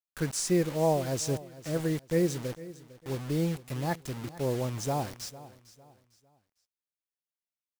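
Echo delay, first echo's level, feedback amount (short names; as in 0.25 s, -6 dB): 0.453 s, -17.5 dB, 33%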